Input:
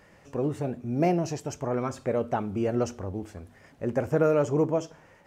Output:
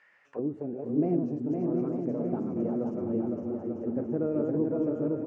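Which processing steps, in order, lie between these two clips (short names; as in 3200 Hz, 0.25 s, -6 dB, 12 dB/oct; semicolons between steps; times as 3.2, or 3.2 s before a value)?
regenerating reverse delay 0.363 s, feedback 45%, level -3 dB; bouncing-ball echo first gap 0.51 s, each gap 0.75×, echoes 5; auto-wah 270–2000 Hz, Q 2.1, down, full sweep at -25 dBFS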